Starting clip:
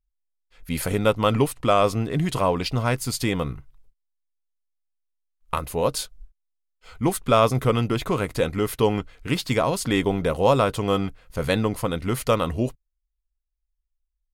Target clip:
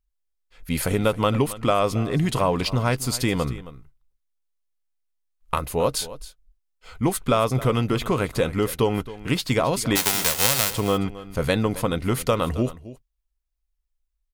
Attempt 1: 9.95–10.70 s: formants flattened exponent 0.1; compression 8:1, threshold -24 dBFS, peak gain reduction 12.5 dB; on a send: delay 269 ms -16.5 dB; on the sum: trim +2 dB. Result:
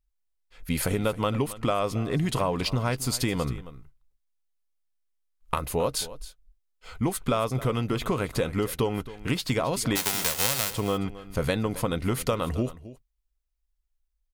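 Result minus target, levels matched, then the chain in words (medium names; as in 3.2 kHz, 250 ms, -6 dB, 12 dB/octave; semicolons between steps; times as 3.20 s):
compression: peak gain reduction +5.5 dB
9.95–10.70 s: formants flattened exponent 0.1; compression 8:1, threshold -17.5 dBFS, peak gain reduction 7 dB; on a send: delay 269 ms -16.5 dB; on the sum: trim +2 dB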